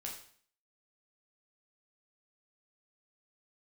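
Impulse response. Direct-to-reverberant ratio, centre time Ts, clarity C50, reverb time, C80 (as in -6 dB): -1.5 dB, 30 ms, 6.0 dB, 0.50 s, 9.5 dB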